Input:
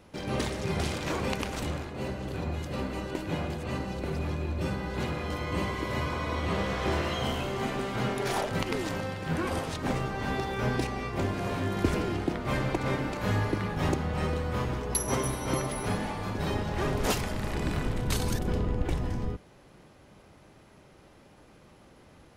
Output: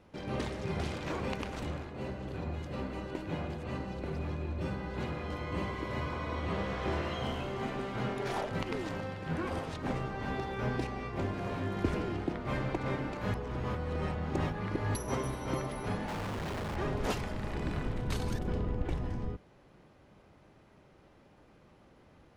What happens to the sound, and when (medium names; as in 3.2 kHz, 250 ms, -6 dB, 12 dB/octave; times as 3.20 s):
13.34–14.95 s: reverse
16.08–16.76 s: Schmitt trigger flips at -44 dBFS
whole clip: low-pass 3.2 kHz 6 dB/octave; trim -4.5 dB